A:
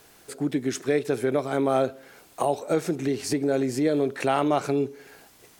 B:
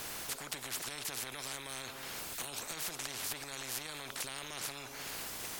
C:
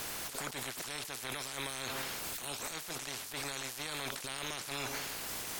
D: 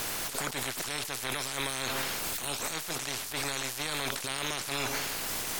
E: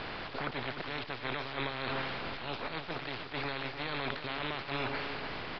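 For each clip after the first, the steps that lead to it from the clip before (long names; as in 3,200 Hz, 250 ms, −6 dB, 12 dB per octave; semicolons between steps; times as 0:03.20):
brickwall limiter −20.5 dBFS, peak gain reduction 11 dB; every bin compressed towards the loudest bin 10 to 1; level +1.5 dB
compressor whose output falls as the input rises −46 dBFS, ratio −1; level +5 dB
gain on one half-wave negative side −3 dB; level +7.5 dB
high-frequency loss of the air 250 metres; single-tap delay 300 ms −9.5 dB; downsampling to 11,025 Hz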